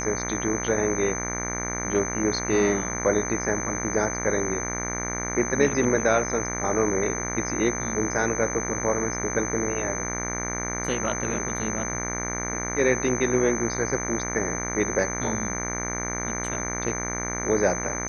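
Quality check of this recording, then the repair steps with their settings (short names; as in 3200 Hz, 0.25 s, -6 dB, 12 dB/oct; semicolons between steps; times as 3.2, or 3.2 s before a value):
buzz 60 Hz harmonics 39 -32 dBFS
tone 6200 Hz -31 dBFS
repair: de-hum 60 Hz, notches 39; notch 6200 Hz, Q 30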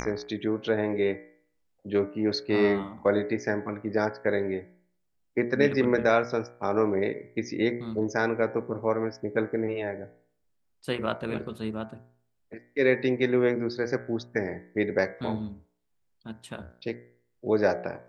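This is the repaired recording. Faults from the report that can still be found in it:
none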